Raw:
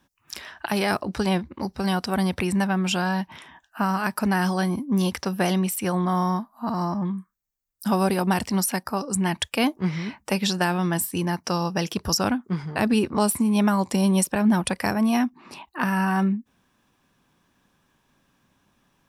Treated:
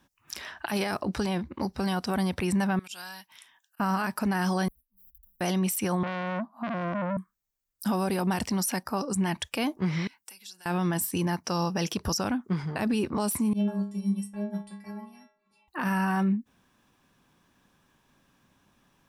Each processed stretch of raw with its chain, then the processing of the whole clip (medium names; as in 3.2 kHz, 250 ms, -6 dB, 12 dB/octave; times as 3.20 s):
2.79–3.80 s: pre-emphasis filter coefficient 0.97 + slow attack 126 ms
4.68–5.41 s: median filter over 15 samples + inverse Chebyshev band-stop 150–5900 Hz, stop band 60 dB + comb 5.3 ms, depth 97%
6.03–7.17 s: high-pass 180 Hz 24 dB/octave + tilt EQ -3.5 dB/octave + transformer saturation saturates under 1.5 kHz
10.07–10.66 s: comb of notches 610 Hz + compression 8:1, threshold -33 dBFS + pre-emphasis filter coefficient 0.97
13.53–15.68 s: bass shelf 160 Hz +11 dB + inharmonic resonator 200 Hz, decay 0.69 s, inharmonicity 0.008 + upward expansion, over -40 dBFS
whole clip: dynamic bell 5.9 kHz, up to +4 dB, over -47 dBFS, Q 5.5; peak limiter -19.5 dBFS